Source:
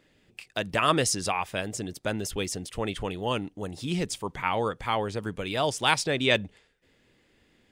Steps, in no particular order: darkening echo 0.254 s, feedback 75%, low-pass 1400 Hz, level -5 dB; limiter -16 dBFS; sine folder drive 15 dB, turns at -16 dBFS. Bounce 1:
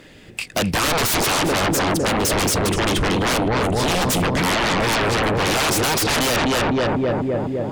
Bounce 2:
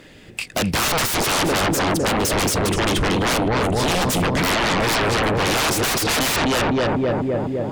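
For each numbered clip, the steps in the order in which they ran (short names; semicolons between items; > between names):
darkening echo > limiter > sine folder; darkening echo > sine folder > limiter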